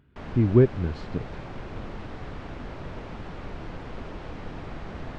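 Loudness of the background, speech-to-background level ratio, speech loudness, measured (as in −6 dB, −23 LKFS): −39.5 LKFS, 15.5 dB, −24.0 LKFS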